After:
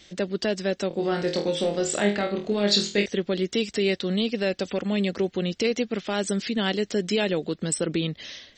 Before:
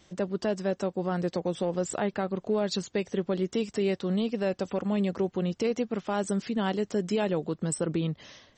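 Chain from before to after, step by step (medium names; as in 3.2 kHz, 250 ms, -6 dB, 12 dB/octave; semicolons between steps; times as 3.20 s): ten-band graphic EQ 125 Hz -7 dB, 1 kHz -8 dB, 2 kHz +5 dB, 4 kHz +8 dB; 0.88–3.06 s: flutter echo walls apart 4.2 m, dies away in 0.34 s; trim +4.5 dB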